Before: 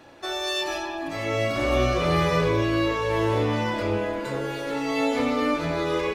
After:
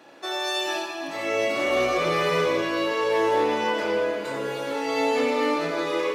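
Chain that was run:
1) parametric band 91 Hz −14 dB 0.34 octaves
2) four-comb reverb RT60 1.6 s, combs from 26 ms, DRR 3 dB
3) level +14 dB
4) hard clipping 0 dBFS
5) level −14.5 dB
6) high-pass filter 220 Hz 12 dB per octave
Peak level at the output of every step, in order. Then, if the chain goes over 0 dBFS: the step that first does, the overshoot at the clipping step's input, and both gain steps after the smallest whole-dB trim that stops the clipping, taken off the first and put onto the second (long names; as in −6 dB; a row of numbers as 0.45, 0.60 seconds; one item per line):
−10.0, −9.0, +5.0, 0.0, −14.5, −11.5 dBFS
step 3, 5.0 dB
step 3 +9 dB, step 5 −9.5 dB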